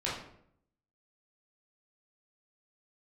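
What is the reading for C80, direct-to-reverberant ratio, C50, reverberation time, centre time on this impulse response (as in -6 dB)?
7.5 dB, -7.5 dB, 3.0 dB, 0.70 s, 46 ms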